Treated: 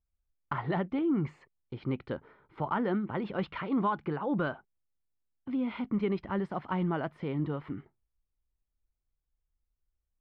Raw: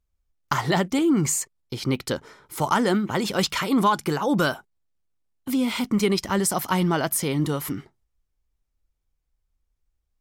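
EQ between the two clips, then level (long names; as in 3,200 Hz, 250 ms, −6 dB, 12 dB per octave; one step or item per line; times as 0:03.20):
low-pass filter 3,400 Hz 12 dB per octave
high-frequency loss of the air 460 metres
−7.5 dB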